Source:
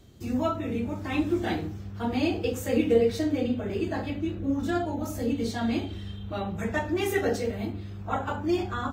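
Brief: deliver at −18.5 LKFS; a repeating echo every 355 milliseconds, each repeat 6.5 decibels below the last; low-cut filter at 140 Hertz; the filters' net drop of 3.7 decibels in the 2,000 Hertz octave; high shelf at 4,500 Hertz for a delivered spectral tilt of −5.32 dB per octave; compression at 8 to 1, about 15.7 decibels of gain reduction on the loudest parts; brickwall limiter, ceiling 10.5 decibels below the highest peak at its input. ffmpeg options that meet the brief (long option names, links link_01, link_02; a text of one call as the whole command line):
ffmpeg -i in.wav -af "highpass=140,equalizer=frequency=2000:width_type=o:gain=-6,highshelf=frequency=4500:gain=6.5,acompressor=threshold=-34dB:ratio=8,alimiter=level_in=11.5dB:limit=-24dB:level=0:latency=1,volume=-11.5dB,aecho=1:1:355|710|1065|1420|1775|2130:0.473|0.222|0.105|0.0491|0.0231|0.0109,volume=24dB" out.wav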